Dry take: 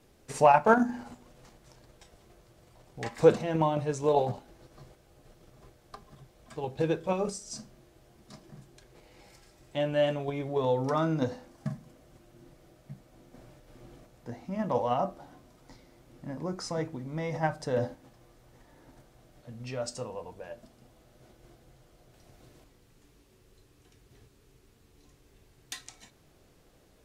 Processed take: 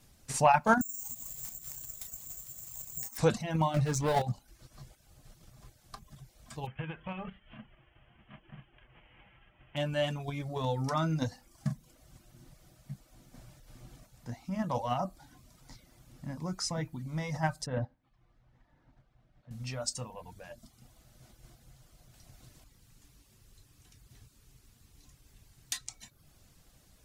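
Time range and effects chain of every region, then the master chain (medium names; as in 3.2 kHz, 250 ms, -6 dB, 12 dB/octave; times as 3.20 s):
0.81–3.18 s: compression 20:1, threshold -48 dBFS + careless resampling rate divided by 6×, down none, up zero stuff
3.74–4.22 s: treble shelf 5.3 kHz -10.5 dB + power-law waveshaper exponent 0.7
6.65–9.76 s: formants flattened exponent 0.6 + Chebyshev low-pass 3.2 kHz, order 8 + compression 8:1, threshold -32 dBFS
17.66–19.51 s: low-pass 2.4 kHz + upward expansion, over -40 dBFS
whole clip: tone controls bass +4 dB, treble +7 dB; reverb removal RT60 0.54 s; peaking EQ 410 Hz -10.5 dB 1.1 oct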